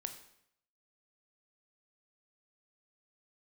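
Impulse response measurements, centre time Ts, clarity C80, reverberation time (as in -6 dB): 13 ms, 12.5 dB, 0.70 s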